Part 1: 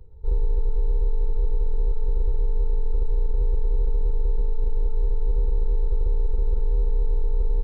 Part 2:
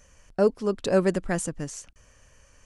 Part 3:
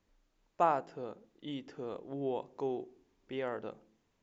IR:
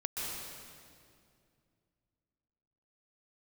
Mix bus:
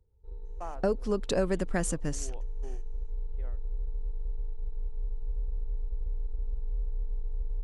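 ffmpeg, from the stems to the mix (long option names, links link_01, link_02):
-filter_complex "[0:a]highpass=frequency=43:poles=1,asubboost=boost=4.5:cutoff=82,volume=-18.5dB[link_01];[1:a]adelay=450,volume=0dB[link_02];[2:a]highshelf=frequency=5600:gain=-10.5,volume=-12.5dB[link_03];[link_02][link_03]amix=inputs=2:normalize=0,agate=range=-23dB:threshold=-47dB:ratio=16:detection=peak,acompressor=threshold=-24dB:ratio=6,volume=0dB[link_04];[link_01][link_04]amix=inputs=2:normalize=0"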